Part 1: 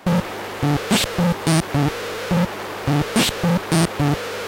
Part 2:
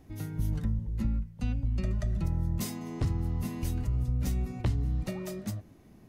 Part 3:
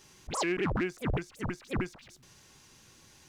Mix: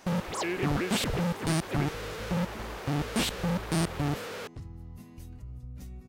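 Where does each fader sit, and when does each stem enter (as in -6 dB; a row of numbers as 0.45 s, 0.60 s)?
-11.0 dB, -13.5 dB, -1.5 dB; 0.00 s, 1.55 s, 0.00 s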